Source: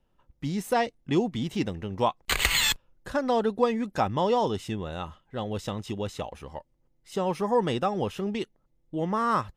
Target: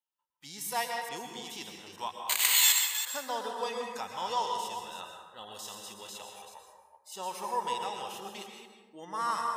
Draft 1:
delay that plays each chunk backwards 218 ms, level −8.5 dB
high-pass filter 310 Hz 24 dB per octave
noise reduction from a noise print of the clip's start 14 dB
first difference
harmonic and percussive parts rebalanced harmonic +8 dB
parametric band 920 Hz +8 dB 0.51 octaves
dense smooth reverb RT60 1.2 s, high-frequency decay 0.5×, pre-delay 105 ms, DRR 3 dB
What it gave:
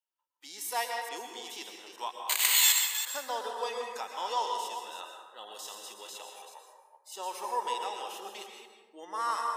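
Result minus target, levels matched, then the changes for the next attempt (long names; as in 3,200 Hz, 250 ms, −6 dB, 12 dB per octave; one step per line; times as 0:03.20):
250 Hz band −5.5 dB
remove: high-pass filter 310 Hz 24 dB per octave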